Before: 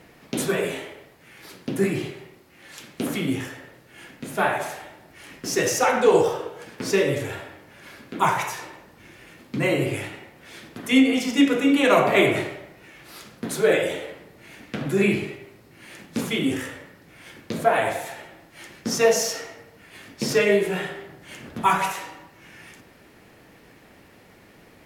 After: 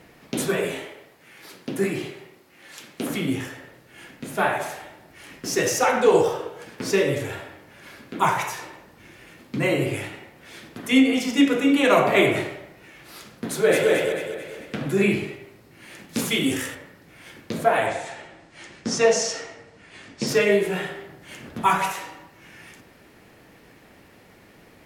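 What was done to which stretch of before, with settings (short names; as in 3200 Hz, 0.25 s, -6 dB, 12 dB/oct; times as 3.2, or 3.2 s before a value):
0.87–3.1 low shelf 120 Hz -11 dB
13.48–13.9 echo throw 0.22 s, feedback 45%, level -2 dB
16.09–16.75 high shelf 3000 Hz +8.5 dB
17.86–20.27 steep low-pass 8800 Hz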